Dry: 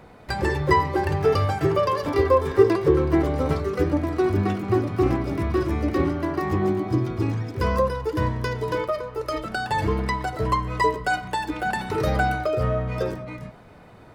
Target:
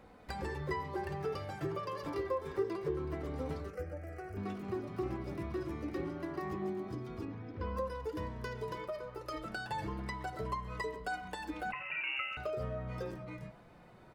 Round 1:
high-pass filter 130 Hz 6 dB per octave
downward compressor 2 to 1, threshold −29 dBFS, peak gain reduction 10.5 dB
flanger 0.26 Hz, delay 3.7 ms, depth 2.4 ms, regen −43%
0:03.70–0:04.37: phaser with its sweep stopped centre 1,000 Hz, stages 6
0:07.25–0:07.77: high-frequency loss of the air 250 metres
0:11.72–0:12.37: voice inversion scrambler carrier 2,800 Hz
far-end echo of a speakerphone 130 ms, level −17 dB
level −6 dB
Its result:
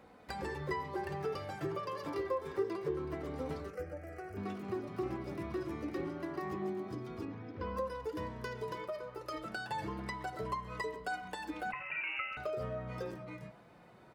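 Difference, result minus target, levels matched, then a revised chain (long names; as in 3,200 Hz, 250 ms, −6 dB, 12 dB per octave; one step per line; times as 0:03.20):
125 Hz band −2.5 dB
downward compressor 2 to 1, threshold −29 dBFS, peak gain reduction 10.5 dB
flanger 0.26 Hz, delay 3.7 ms, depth 2.4 ms, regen −43%
0:03.70–0:04.37: phaser with its sweep stopped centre 1,000 Hz, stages 6
0:07.25–0:07.77: high-frequency loss of the air 250 metres
0:11.72–0:12.37: voice inversion scrambler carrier 2,800 Hz
far-end echo of a speakerphone 130 ms, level −17 dB
level −6 dB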